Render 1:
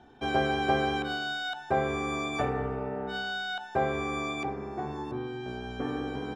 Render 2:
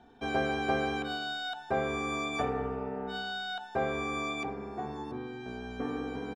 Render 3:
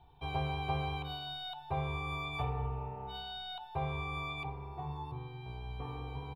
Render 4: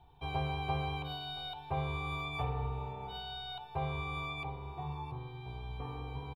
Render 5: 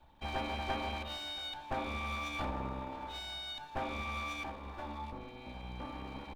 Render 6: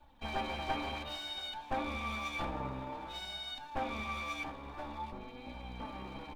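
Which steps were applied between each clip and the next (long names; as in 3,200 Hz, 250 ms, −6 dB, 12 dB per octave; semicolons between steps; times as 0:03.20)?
comb filter 4.3 ms, depth 36%; level −3 dB
drawn EQ curve 150 Hz 0 dB, 220 Hz −29 dB, 340 Hz −17 dB, 650 Hz −17 dB, 970 Hz −3 dB, 1,600 Hz −25 dB, 2,500 Hz −8 dB, 4,100 Hz −10 dB, 6,300 Hz −30 dB, 12,000 Hz −3 dB; level +6 dB
repeating echo 675 ms, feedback 40%, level −18 dB
lower of the sound and its delayed copy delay 3.5 ms; level +1 dB
flanger 0.54 Hz, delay 3.3 ms, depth 4.1 ms, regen +42%; level +4 dB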